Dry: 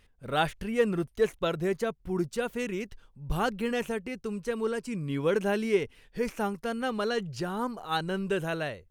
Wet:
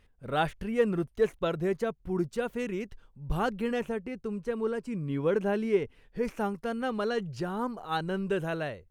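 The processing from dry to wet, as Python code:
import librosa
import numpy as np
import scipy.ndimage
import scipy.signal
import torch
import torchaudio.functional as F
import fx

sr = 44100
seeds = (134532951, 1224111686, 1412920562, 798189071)

y = fx.high_shelf(x, sr, hz=2400.0, db=fx.steps((0.0, -7.0), (3.78, -12.0), (6.23, -7.0)))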